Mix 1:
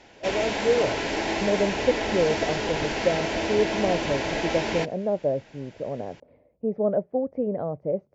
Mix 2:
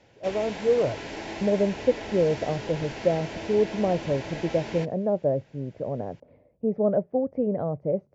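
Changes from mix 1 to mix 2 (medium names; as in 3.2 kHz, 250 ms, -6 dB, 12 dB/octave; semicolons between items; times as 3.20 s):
background -9.5 dB; master: add peaking EQ 120 Hz +5 dB 1.5 oct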